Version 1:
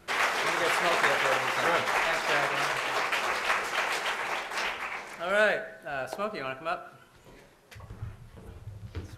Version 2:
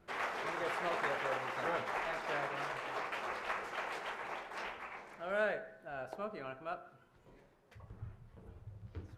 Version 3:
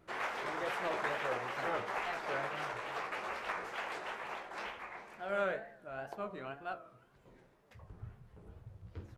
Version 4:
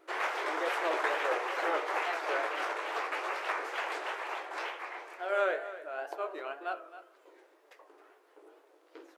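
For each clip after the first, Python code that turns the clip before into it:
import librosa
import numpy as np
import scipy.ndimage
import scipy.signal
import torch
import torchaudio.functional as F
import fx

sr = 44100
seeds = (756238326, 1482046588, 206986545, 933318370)

y1 = fx.high_shelf(x, sr, hz=2300.0, db=-12.0)
y1 = y1 * librosa.db_to_amplitude(-8.0)
y2 = fx.doubler(y1, sr, ms=15.0, db=-12.0)
y2 = fx.wow_flutter(y2, sr, seeds[0], rate_hz=2.1, depth_cents=130.0)
y3 = fx.brickwall_highpass(y2, sr, low_hz=290.0)
y3 = y3 + 10.0 ** (-14.0 / 20.0) * np.pad(y3, (int(267 * sr / 1000.0), 0))[:len(y3)]
y3 = y3 * librosa.db_to_amplitude(5.0)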